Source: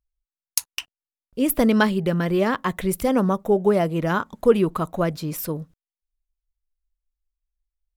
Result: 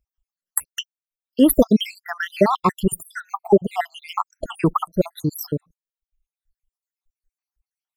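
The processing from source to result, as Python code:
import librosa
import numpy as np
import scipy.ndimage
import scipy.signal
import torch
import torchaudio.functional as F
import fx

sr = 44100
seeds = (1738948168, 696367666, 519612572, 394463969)

y = fx.spec_dropout(x, sr, seeds[0], share_pct=77)
y = fx.dereverb_blind(y, sr, rt60_s=1.0)
y = y * librosa.db_to_amplitude(8.0)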